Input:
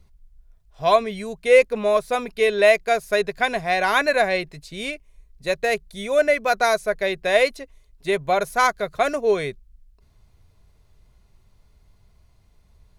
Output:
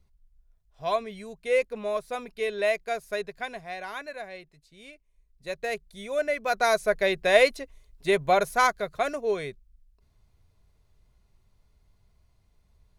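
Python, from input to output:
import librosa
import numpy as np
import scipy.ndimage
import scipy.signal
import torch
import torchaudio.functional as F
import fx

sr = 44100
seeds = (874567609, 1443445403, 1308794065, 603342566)

y = fx.gain(x, sr, db=fx.line((3.12, -10.0), (4.15, -19.5), (4.81, -19.5), (5.65, -9.0), (6.3, -9.0), (6.86, -1.0), (8.34, -1.0), (9.17, -7.5)))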